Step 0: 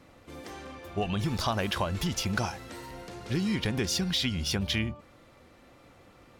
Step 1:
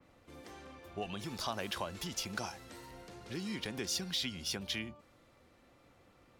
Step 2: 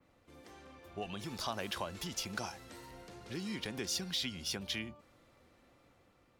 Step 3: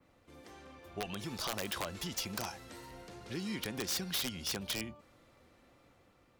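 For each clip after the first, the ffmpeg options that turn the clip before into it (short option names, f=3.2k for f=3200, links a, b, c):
-filter_complex "[0:a]acrossover=split=200|940|5400[a][b][c][d];[a]acompressor=threshold=-42dB:ratio=6[e];[e][b][c][d]amix=inputs=4:normalize=0,adynamicequalizer=threshold=0.00794:dfrequency=3600:dqfactor=0.7:tfrequency=3600:tqfactor=0.7:attack=5:release=100:ratio=0.375:range=2:mode=boostabove:tftype=highshelf,volume=-8.5dB"
-af "dynaudnorm=f=340:g=5:m=4dB,volume=-4.5dB"
-af "aeval=exprs='(mod(26.6*val(0)+1,2)-1)/26.6':c=same,volume=1.5dB"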